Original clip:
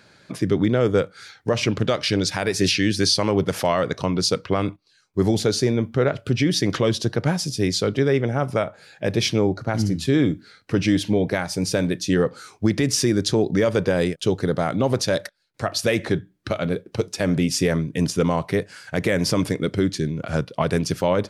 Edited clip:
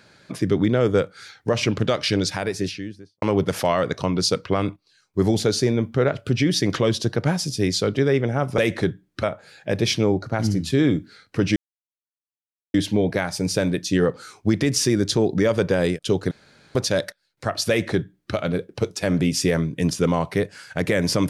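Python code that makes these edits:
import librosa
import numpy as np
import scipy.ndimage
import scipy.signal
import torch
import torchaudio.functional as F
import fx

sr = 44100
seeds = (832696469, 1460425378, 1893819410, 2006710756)

y = fx.studio_fade_out(x, sr, start_s=2.14, length_s=1.08)
y = fx.edit(y, sr, fx.insert_silence(at_s=10.91, length_s=1.18),
    fx.room_tone_fill(start_s=14.48, length_s=0.44),
    fx.duplicate(start_s=15.86, length_s=0.65, to_s=8.58), tone=tone)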